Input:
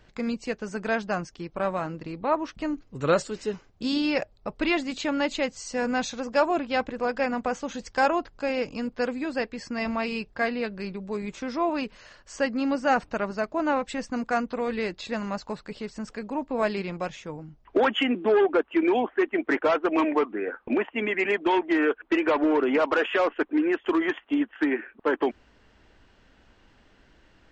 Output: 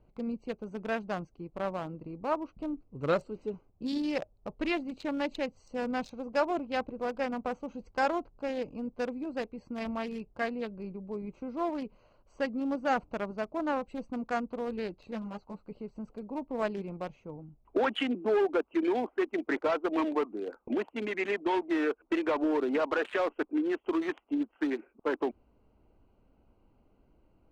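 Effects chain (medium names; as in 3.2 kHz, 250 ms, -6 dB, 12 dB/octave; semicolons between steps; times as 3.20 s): local Wiener filter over 25 samples; 15.11–15.68 s: three-phase chorus; trim -5.5 dB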